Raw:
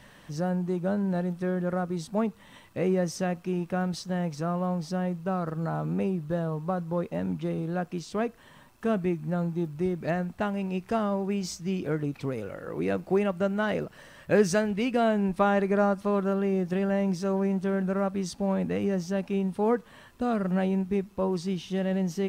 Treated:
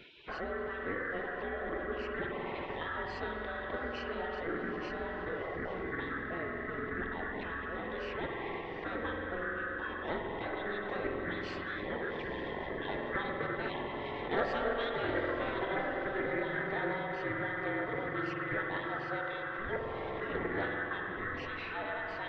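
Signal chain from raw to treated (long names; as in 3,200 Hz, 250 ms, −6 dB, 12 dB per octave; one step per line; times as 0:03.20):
neighbouring bands swapped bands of 1,000 Hz
low-pass filter 2,600 Hz 24 dB per octave
on a send: feedback delay with all-pass diffusion 830 ms, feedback 49%, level −14 dB
on the sum: spring reverb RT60 2.2 s, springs 46 ms, chirp 75 ms, DRR 3 dB
gate on every frequency bin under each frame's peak −20 dB weak
in parallel at −1 dB: compressor whose output falls as the input rises −54 dBFS, ratio −1
on the sum: parametric band 410 Hz +8.5 dB 1 octave
highs frequency-modulated by the lows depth 0.14 ms
level +2 dB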